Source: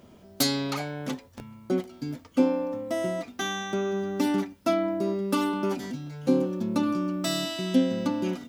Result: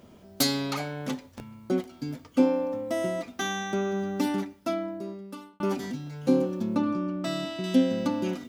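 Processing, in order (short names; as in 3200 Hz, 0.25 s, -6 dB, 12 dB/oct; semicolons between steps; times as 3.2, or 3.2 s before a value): 6.75–7.64 LPF 1900 Hz 6 dB/oct; reverb, pre-delay 3 ms, DRR 17 dB; 4.05–5.6 fade out linear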